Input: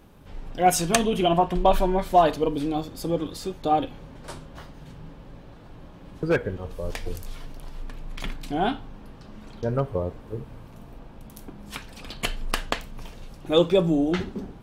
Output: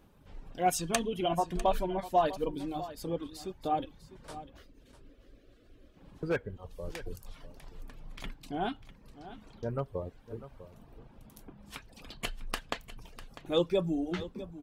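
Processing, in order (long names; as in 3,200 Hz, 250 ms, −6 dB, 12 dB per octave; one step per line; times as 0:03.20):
reverb reduction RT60 0.74 s
0:04.57–0:05.97: phaser with its sweep stopped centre 370 Hz, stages 4
single-tap delay 649 ms −15 dB
level −8.5 dB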